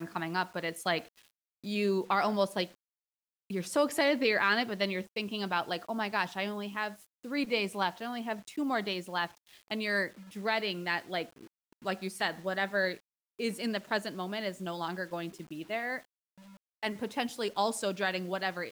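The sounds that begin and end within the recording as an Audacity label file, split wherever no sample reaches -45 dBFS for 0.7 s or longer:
3.500000	16.000000	sound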